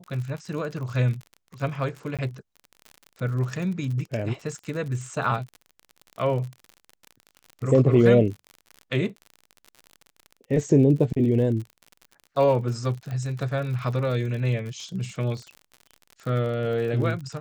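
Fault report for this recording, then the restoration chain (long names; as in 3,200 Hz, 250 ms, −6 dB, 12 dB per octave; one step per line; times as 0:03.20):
surface crackle 51 per second −33 dBFS
0:02.17–0:02.19: drop-out 17 ms
0:13.11: click −23 dBFS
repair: click removal
repair the gap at 0:02.17, 17 ms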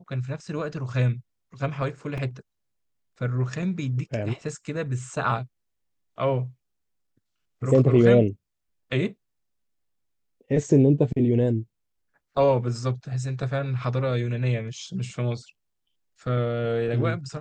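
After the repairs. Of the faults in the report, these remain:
none of them is left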